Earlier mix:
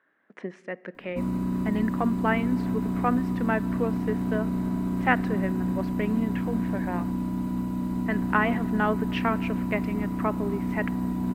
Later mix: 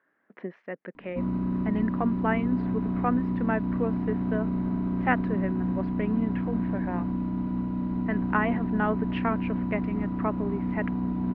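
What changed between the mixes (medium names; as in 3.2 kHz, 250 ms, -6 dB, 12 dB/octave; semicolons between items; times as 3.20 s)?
speech: send off; master: add distance through air 340 m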